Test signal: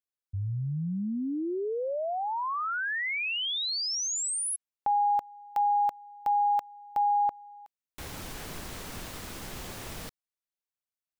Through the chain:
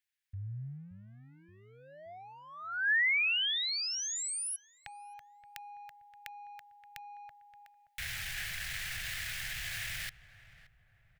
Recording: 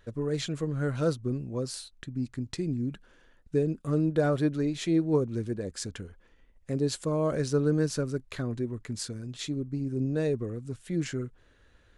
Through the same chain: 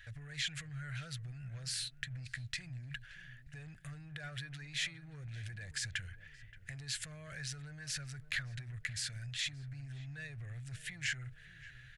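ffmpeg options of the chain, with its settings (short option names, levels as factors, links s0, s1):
-filter_complex "[0:a]acompressor=threshold=0.0112:ratio=6:attack=0.93:release=20:knee=1:detection=peak,firequalizer=gain_entry='entry(130,0);entry(230,-24);entry(380,-24);entry(690,-8);entry(1000,-14);entry(1700,13);entry(3800,6);entry(6000,3)':delay=0.05:min_phase=1,asplit=2[s0][s1];[s1]adelay=575,lowpass=f=1100:p=1,volume=0.211,asplit=2[s2][s3];[s3]adelay=575,lowpass=f=1100:p=1,volume=0.48,asplit=2[s4][s5];[s5]adelay=575,lowpass=f=1100:p=1,volume=0.48,asplit=2[s6][s7];[s7]adelay=575,lowpass=f=1100:p=1,volume=0.48,asplit=2[s8][s9];[s9]adelay=575,lowpass=f=1100:p=1,volume=0.48[s10];[s0][s2][s4][s6][s8][s10]amix=inputs=6:normalize=0"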